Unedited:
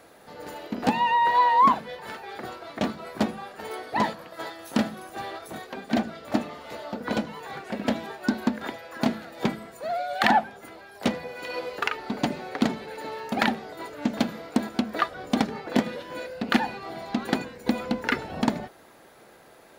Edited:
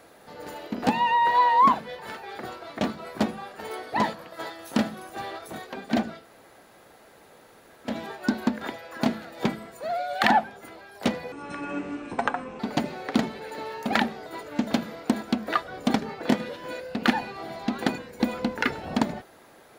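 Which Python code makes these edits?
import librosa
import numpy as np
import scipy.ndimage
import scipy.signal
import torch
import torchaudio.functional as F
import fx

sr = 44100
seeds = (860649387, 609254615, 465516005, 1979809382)

y = fx.edit(x, sr, fx.room_tone_fill(start_s=6.2, length_s=1.7, crossfade_s=0.16),
    fx.speed_span(start_s=11.32, length_s=0.74, speed=0.58), tone=tone)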